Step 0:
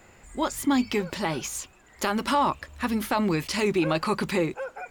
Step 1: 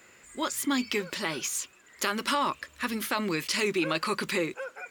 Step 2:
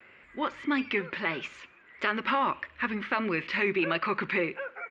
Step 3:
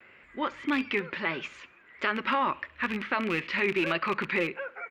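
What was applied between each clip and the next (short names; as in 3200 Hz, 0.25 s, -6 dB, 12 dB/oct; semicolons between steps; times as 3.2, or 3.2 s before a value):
HPF 550 Hz 6 dB/oct; bell 780 Hz -10.5 dB 0.7 oct; gain +2 dB
ladder low-pass 2800 Hz, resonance 35%; vibrato 1.6 Hz 78 cents; feedback echo 68 ms, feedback 43%, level -21.5 dB; gain +7 dB
rattling part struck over -36 dBFS, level -23 dBFS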